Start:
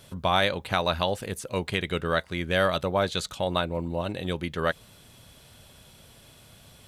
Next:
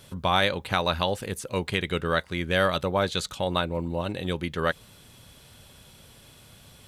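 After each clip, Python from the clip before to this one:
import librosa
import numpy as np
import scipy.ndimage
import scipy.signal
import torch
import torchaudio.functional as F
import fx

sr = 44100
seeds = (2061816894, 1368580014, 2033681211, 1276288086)

y = fx.peak_eq(x, sr, hz=660.0, db=-4.5, octaves=0.21)
y = F.gain(torch.from_numpy(y), 1.0).numpy()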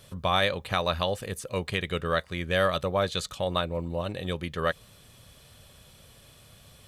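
y = x + 0.3 * np.pad(x, (int(1.7 * sr / 1000.0), 0))[:len(x)]
y = F.gain(torch.from_numpy(y), -2.5).numpy()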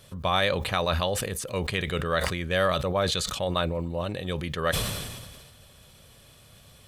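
y = fx.sustainer(x, sr, db_per_s=35.0)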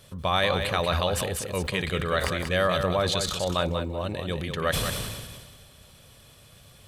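y = fx.echo_feedback(x, sr, ms=187, feedback_pct=17, wet_db=-7)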